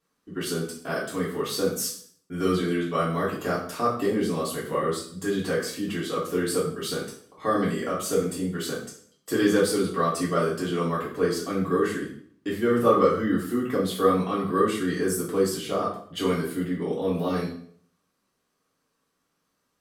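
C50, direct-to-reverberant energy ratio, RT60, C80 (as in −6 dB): 5.5 dB, −8.0 dB, 0.55 s, 9.0 dB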